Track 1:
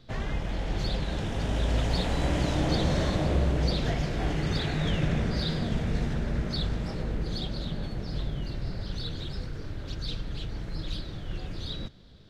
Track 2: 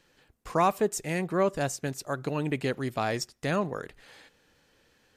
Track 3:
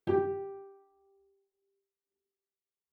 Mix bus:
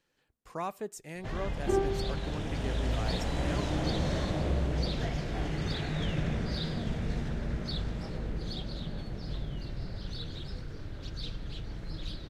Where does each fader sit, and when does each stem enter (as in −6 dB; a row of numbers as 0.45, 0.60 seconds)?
−4.5, −12.0, 0.0 decibels; 1.15, 0.00, 1.60 seconds